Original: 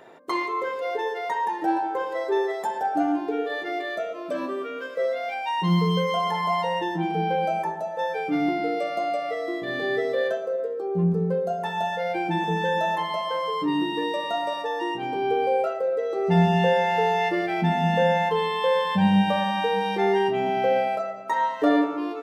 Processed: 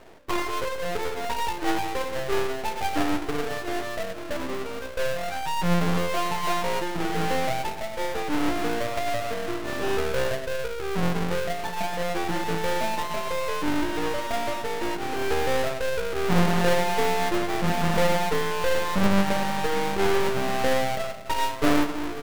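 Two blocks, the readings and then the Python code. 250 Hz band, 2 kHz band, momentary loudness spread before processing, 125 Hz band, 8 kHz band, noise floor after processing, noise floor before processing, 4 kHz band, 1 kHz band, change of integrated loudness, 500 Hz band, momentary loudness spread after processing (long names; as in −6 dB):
−2.5 dB, 0.0 dB, 7 LU, −2.5 dB, can't be measured, −33 dBFS, −33 dBFS, +1.0 dB, −3.5 dB, −2.0 dB, −2.5 dB, 7 LU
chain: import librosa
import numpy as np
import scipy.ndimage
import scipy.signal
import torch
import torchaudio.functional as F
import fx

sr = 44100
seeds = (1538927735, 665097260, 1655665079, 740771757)

y = fx.halfwave_hold(x, sr)
y = fx.bass_treble(y, sr, bass_db=-3, treble_db=-9)
y = np.maximum(y, 0.0)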